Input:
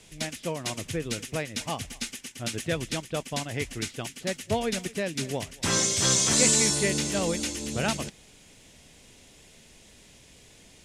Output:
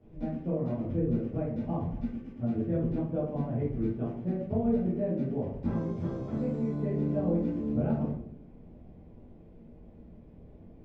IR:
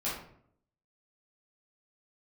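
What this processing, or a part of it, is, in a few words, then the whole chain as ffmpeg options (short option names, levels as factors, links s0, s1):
television next door: -filter_complex "[0:a]acompressor=threshold=0.0355:ratio=5,lowpass=500[s0];[1:a]atrim=start_sample=2205[s1];[s0][s1]afir=irnorm=-1:irlink=0"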